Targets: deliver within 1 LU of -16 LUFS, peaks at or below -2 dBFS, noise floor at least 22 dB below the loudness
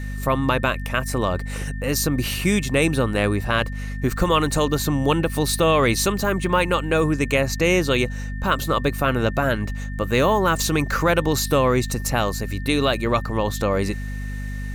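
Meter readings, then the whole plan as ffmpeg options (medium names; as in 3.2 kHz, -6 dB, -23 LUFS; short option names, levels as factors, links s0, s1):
hum 50 Hz; highest harmonic 250 Hz; hum level -26 dBFS; steady tone 1.8 kHz; tone level -39 dBFS; loudness -21.5 LUFS; peak level -6.0 dBFS; loudness target -16.0 LUFS
-> -af "bandreject=f=50:t=h:w=6,bandreject=f=100:t=h:w=6,bandreject=f=150:t=h:w=6,bandreject=f=200:t=h:w=6,bandreject=f=250:t=h:w=6"
-af "bandreject=f=1800:w=30"
-af "volume=1.88,alimiter=limit=0.794:level=0:latency=1"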